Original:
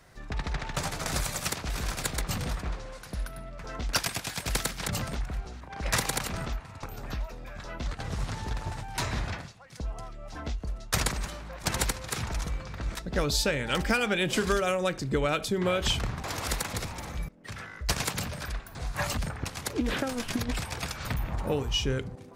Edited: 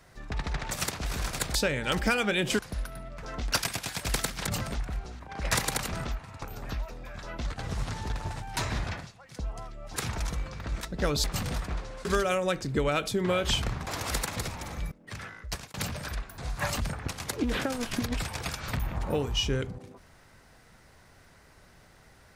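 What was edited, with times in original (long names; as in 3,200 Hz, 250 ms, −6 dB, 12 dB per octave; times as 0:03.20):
0:00.71–0:01.35: remove
0:02.19–0:03.00: swap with 0:13.38–0:14.42
0:10.37–0:12.10: remove
0:17.62–0:18.11: fade out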